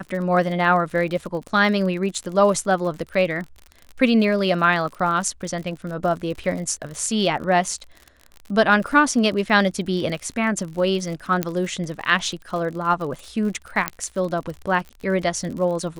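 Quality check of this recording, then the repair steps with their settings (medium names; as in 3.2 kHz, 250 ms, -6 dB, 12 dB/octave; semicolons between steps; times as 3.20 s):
crackle 51 per s -30 dBFS
11.43 s: pop -6 dBFS
13.88 s: pop -4 dBFS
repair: de-click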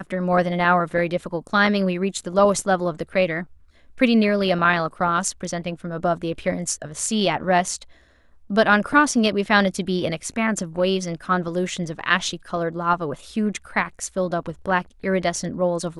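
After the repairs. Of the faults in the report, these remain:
nothing left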